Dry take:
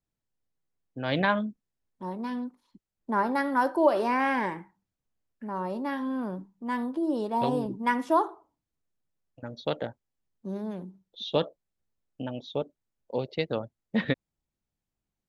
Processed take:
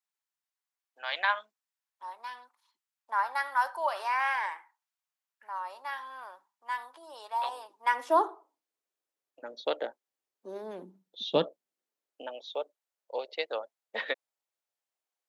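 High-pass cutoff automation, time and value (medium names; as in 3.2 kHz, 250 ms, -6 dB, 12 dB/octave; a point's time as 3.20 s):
high-pass 24 dB/octave
7.76 s 850 Hz
8.19 s 360 Hz
10.61 s 360 Hz
11.25 s 150 Hz
12.39 s 520 Hz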